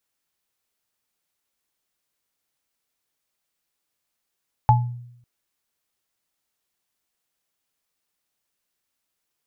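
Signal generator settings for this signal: sine partials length 0.55 s, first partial 121 Hz, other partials 858 Hz, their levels 2.5 dB, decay 0.78 s, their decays 0.24 s, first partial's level -12 dB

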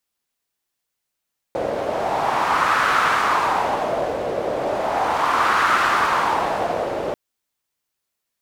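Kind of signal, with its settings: wind-like swept noise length 5.59 s, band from 540 Hz, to 1300 Hz, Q 3, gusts 2, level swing 6.5 dB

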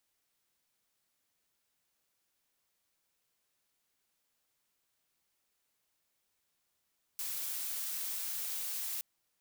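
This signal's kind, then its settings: noise blue, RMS -38 dBFS 1.82 s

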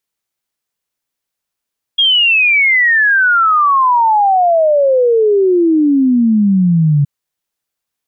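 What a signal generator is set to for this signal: log sweep 3300 Hz -> 140 Hz 5.07 s -7.5 dBFS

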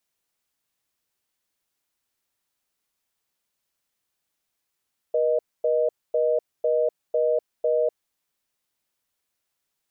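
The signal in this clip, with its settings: call progress tone reorder tone, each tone -21.5 dBFS 2.79 s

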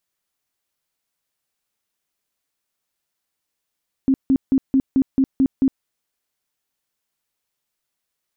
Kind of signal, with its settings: tone bursts 267 Hz, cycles 16, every 0.22 s, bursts 8, -12 dBFS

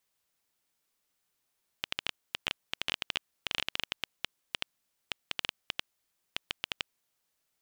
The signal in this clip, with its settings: random clicks 9.1/s -12 dBFS 5.12 s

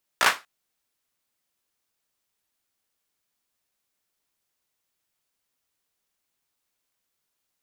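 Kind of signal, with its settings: hand clap length 0.24 s, apart 17 ms, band 1300 Hz, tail 0.24 s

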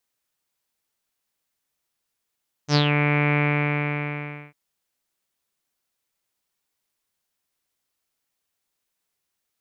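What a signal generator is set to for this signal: synth note saw D3 24 dB/oct, low-pass 2300 Hz, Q 7.1, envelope 1.5 oct, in 0.24 s, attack 69 ms, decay 0.09 s, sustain -4.5 dB, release 1.16 s, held 0.69 s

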